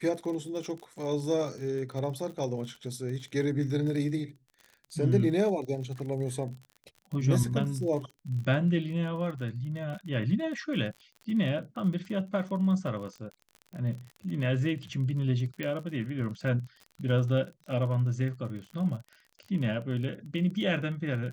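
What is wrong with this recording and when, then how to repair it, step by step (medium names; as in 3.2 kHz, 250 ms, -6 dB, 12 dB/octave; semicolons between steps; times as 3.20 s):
crackle 39 per s -38 dBFS
15.63 s: pop -20 dBFS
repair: de-click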